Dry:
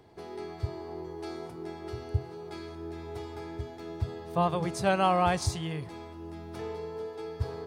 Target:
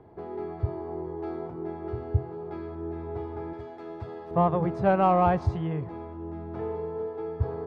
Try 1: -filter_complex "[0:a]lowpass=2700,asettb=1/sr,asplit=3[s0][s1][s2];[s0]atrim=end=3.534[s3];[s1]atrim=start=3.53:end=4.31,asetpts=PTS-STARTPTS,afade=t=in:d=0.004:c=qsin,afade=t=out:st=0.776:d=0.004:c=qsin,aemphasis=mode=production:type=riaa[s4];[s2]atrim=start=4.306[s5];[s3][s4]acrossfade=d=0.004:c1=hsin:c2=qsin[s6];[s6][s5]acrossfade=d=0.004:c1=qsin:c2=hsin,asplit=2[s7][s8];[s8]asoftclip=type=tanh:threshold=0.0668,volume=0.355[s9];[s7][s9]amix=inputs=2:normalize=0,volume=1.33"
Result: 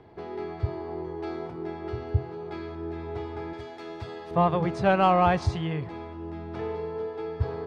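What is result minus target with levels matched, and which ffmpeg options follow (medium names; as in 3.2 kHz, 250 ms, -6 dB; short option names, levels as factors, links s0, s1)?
2 kHz band +5.5 dB
-filter_complex "[0:a]lowpass=1200,asettb=1/sr,asplit=3[s0][s1][s2];[s0]atrim=end=3.534[s3];[s1]atrim=start=3.53:end=4.31,asetpts=PTS-STARTPTS,afade=t=in:d=0.004:c=qsin,afade=t=out:st=0.776:d=0.004:c=qsin,aemphasis=mode=production:type=riaa[s4];[s2]atrim=start=4.306[s5];[s3][s4]acrossfade=d=0.004:c1=hsin:c2=qsin[s6];[s6][s5]acrossfade=d=0.004:c1=qsin:c2=hsin,asplit=2[s7][s8];[s8]asoftclip=type=tanh:threshold=0.0668,volume=0.355[s9];[s7][s9]amix=inputs=2:normalize=0,volume=1.33"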